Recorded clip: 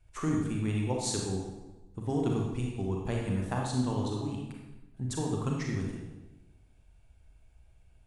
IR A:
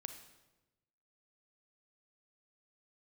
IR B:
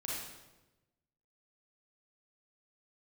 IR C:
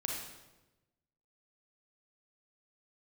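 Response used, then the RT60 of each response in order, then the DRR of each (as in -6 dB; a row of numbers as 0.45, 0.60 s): C; 1.1, 1.1, 1.1 s; 7.0, -6.0, -1.0 dB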